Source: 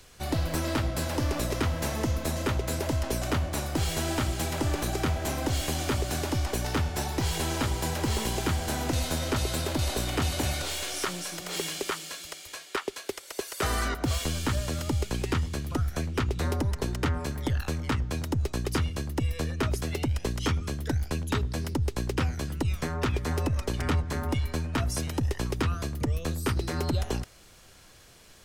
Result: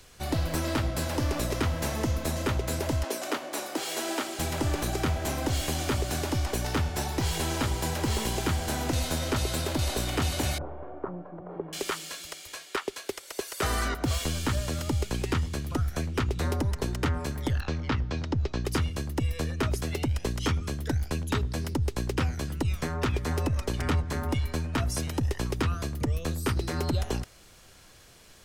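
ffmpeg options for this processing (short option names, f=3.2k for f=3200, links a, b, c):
-filter_complex "[0:a]asettb=1/sr,asplit=3[a][b][c];[a]atrim=end=3.044[d];[b]atrim=start=3.04:end=4.39,asetpts=PTS-STARTPTS,afade=t=in:d=0.004:c=qsin,afade=t=out:st=1.346:d=0.004:c=qsin,highpass=f=280:w=0.5412,highpass=f=280:w=1.3066[e];[c]atrim=start=4.386[f];[d][e]acrossfade=d=0.004:c1=hsin:c2=qsin[g];[g][f]acrossfade=d=0.004:c1=qsin:c2=hsin,asettb=1/sr,asplit=3[h][i][j];[h]atrim=end=10.584[k];[i]atrim=start=10.58:end=11.73,asetpts=PTS-STARTPTS,afade=t=in:d=0.004:c=qsin,afade=t=out:st=1.146:d=0.004:c=qsin,lowpass=f=1k:w=0.5412,lowpass=f=1k:w=1.3066[l];[j]atrim=start=11.726[m];[k][l]acrossfade=d=0.004:c1=hsin:c2=qsin[n];[n][m]acrossfade=d=0.004:c1=qsin:c2=hsin,asettb=1/sr,asplit=3[o][p][q];[o]atrim=end=17.604[r];[p]atrim=start=17.6:end=18.65,asetpts=PTS-STARTPTS,afade=t=in:d=0.004:c=qsin,afade=t=out:st=1.046:d=0.004:c=qsin,lowpass=f=5.5k:w=0.5412,lowpass=f=5.5k:w=1.3066[s];[q]atrim=start=18.646[t];[r][s]acrossfade=d=0.004:c1=hsin:c2=qsin[u];[u][t]acrossfade=d=0.004:c1=qsin:c2=hsin"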